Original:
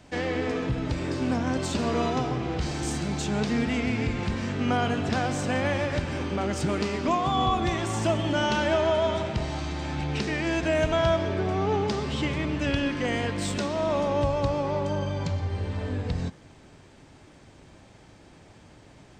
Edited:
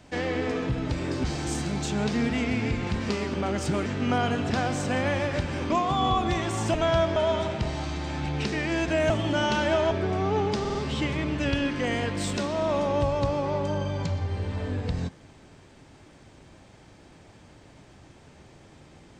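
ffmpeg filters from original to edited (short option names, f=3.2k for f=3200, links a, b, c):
-filter_complex "[0:a]asplit=13[a][b][c][d][e][f][g][h][i][j][k][l][m];[a]atrim=end=1.242[n];[b]atrim=start=2.598:end=4.452[o];[c]atrim=start=6.808:end=7.062[p];[d]atrim=start=6.288:end=6.812[q];[e]atrim=start=4.448:end=6.292[r];[f]atrim=start=7.058:end=8.102[s];[g]atrim=start=10.848:end=11.272[t];[h]atrim=start=8.908:end=10.852[u];[i]atrim=start=8.098:end=8.912[v];[j]atrim=start=11.268:end=12.012[w];[k]atrim=start=11.958:end=12.012[x];[l]atrim=start=11.958:end=12.012[y];[m]atrim=start=11.958[z];[n][o]acrossfade=d=0.004:c1=hsin:c2=hsin[aa];[aa][p]acrossfade=d=0.004:c1=hsin:c2=hsin[ab];[ab][q]acrossfade=d=0.004:c1=hsin:c2=hsin[ac];[ac][r]acrossfade=d=0.004:c1=hsin:c2=hsin[ad];[ad][s]acrossfade=d=0.004:c1=hsin:c2=hsin[ae];[ae][t]acrossfade=d=0.004:c1=hsin:c2=hsin[af];[af][u]acrossfade=d=0.004:c1=hsin:c2=hsin[ag];[ag][v]acrossfade=d=0.004:c1=hsin:c2=hsin[ah];[ah][w]acrossfade=d=0.004:c1=hsin:c2=hsin[ai];[ai][x]acrossfade=d=0.004:c1=hsin:c2=hsin[aj];[aj][y]acrossfade=d=0.004:c1=hsin:c2=hsin[ak];[ak][z]acrossfade=d=0.004:c1=hsin:c2=hsin"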